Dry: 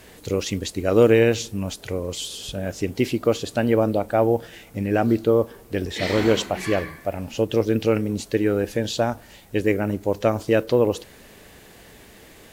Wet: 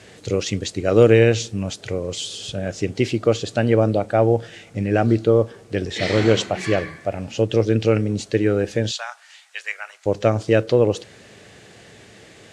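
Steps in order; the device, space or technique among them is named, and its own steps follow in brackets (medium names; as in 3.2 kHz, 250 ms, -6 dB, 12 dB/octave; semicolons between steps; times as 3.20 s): car door speaker (cabinet simulation 100–8300 Hz, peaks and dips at 110 Hz +7 dB, 260 Hz -4 dB, 970 Hz -6 dB); 8.91–10.06 s: inverse Chebyshev high-pass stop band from 290 Hz, stop band 60 dB; trim +2.5 dB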